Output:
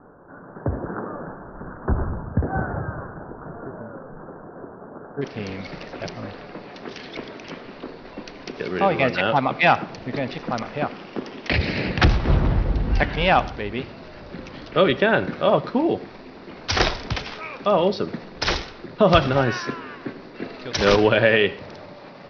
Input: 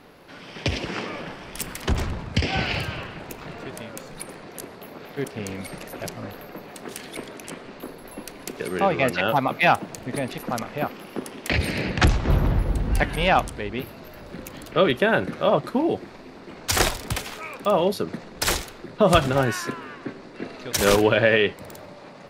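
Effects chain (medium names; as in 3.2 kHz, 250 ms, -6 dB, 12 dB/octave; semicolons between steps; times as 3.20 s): steep low-pass 1.6 kHz 96 dB/octave, from 5.21 s 5.7 kHz; reverberation RT60 0.45 s, pre-delay 62 ms, DRR 18 dB; trim +1.5 dB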